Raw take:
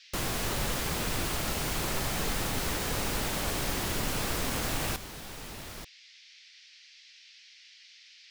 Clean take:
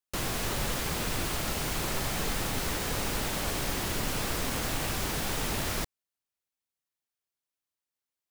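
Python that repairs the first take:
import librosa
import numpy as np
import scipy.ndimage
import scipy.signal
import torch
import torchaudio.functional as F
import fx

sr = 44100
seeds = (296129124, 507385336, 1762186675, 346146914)

y = fx.noise_reduce(x, sr, print_start_s=6.48, print_end_s=6.98, reduce_db=30.0)
y = fx.fix_level(y, sr, at_s=4.96, step_db=11.5)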